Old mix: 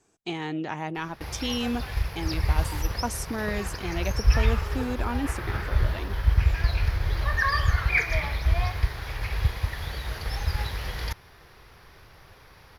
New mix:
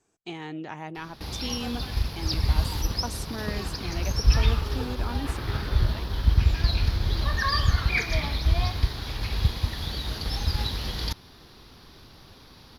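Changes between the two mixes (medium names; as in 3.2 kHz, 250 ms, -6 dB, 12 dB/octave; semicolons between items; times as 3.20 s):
speech -5.0 dB; background: add graphic EQ 250/500/2000/4000 Hz +12/-3/-7/+10 dB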